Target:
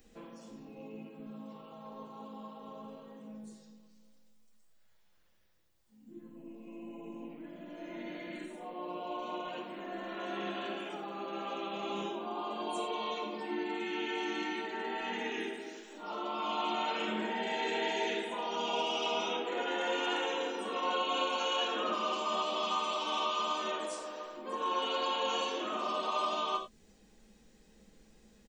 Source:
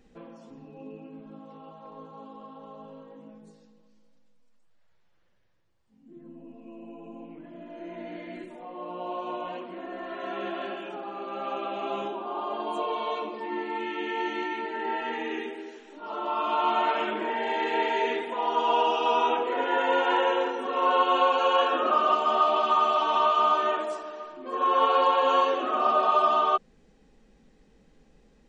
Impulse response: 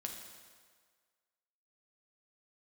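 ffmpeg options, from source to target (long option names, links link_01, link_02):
-filter_complex "[0:a]acrossover=split=330|3000[link_01][link_02][link_03];[link_02]acompressor=threshold=-37dB:ratio=2[link_04];[link_01][link_04][link_03]amix=inputs=3:normalize=0,asplit=2[link_05][link_06];[link_06]asetrate=37084,aresample=44100,atempo=1.18921,volume=-10dB[link_07];[link_05][link_07]amix=inputs=2:normalize=0,aemphasis=mode=production:type=75kf[link_08];[1:a]atrim=start_sample=2205,afade=type=out:start_time=0.16:duration=0.01,atrim=end_sample=7497[link_09];[link_08][link_09]afir=irnorm=-1:irlink=0,volume=-1.5dB"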